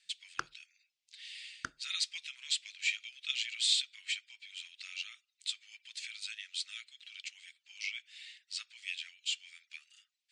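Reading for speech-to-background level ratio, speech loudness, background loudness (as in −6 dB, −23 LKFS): 7.5 dB, −37.0 LKFS, −44.5 LKFS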